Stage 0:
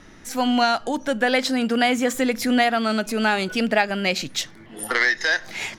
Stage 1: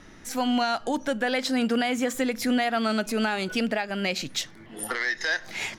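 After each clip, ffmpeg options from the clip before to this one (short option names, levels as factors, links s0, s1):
-af "alimiter=limit=0.211:level=0:latency=1:release=243,volume=0.794"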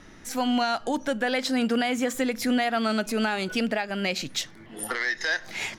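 -af anull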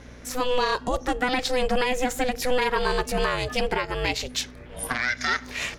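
-af "aeval=exprs='val(0)*sin(2*PI*250*n/s)':c=same,aeval=exprs='val(0)+0.00316*(sin(2*PI*60*n/s)+sin(2*PI*2*60*n/s)/2+sin(2*PI*3*60*n/s)/3+sin(2*PI*4*60*n/s)/4+sin(2*PI*5*60*n/s)/5)':c=same,volume=1.68"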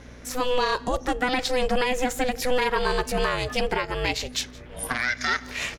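-af "aecho=1:1:169:0.0668"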